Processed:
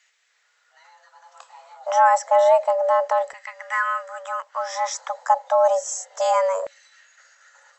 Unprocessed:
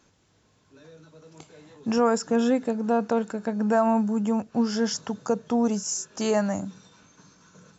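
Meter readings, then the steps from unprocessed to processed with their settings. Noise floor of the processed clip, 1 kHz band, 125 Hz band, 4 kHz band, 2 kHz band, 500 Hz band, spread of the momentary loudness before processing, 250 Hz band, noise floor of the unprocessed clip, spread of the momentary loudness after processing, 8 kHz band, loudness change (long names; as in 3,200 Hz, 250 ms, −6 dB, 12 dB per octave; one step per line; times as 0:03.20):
−66 dBFS, +11.0 dB, below −40 dB, −1.5 dB, +9.0 dB, +5.5 dB, 7 LU, below −40 dB, −64 dBFS, 14 LU, can't be measured, +4.0 dB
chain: frequency shifter +370 Hz
auto-filter high-pass saw down 0.3 Hz 400–2,100 Hz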